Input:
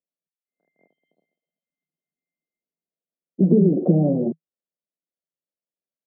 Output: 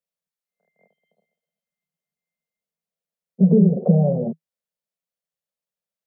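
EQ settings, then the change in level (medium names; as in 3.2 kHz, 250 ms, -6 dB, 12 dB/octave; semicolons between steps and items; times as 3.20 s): Chebyshev band-stop 210–450 Hz, order 2; +3.0 dB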